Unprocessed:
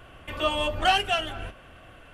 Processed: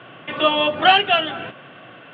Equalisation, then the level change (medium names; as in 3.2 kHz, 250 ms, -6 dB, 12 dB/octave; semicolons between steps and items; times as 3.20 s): Chebyshev band-pass 130–3600 Hz, order 4; +9.0 dB